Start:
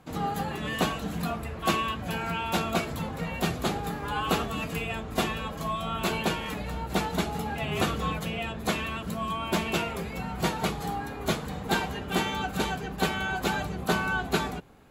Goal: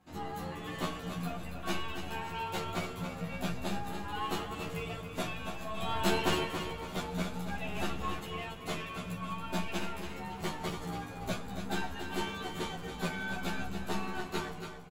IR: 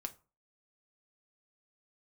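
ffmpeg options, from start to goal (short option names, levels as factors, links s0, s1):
-filter_complex "[0:a]aeval=exprs='(tanh(10*val(0)+0.6)-tanh(0.6))/10':c=same,asettb=1/sr,asplit=3[s0][s1][s2];[s0]atrim=end=5.774[s3];[s1]atrim=start=5.77:end=6.44,asetpts=PTS-STARTPTS,afade=t=in:d=0.004:c=qsin,afade=t=out:st=0.666:d=0.004:c=qsin,acontrast=87[s4];[s2]atrim=start=6.436[s5];[s3][s4]acrossfade=d=0.004:c1=hsin:c2=qsin[s6];[s6][s5]acrossfade=d=0.004:c1=qsin:c2=hsin,equalizer=f=12000:w=3.8:g=-3,aecho=1:1:281|562|843|1124:0.398|0.155|0.0606|0.0236,asplit=2[s7][s8];[1:a]atrim=start_sample=2205,adelay=11[s9];[s8][s9]afir=irnorm=-1:irlink=0,volume=1[s10];[s7][s10]amix=inputs=2:normalize=0,asplit=2[s11][s12];[s12]adelay=11.7,afreqshift=0.5[s13];[s11][s13]amix=inputs=2:normalize=1,volume=0.596"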